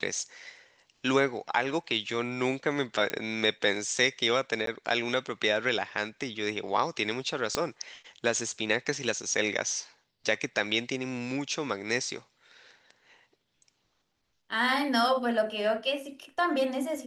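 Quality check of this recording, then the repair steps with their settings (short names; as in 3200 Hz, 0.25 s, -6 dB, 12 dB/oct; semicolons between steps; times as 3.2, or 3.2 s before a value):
3.1 pop -14 dBFS
4.66–4.67 gap 13 ms
7.55 pop -12 dBFS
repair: de-click; interpolate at 4.66, 13 ms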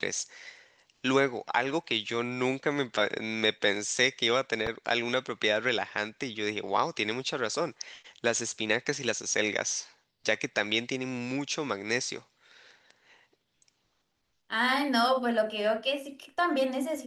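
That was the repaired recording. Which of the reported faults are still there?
7.55 pop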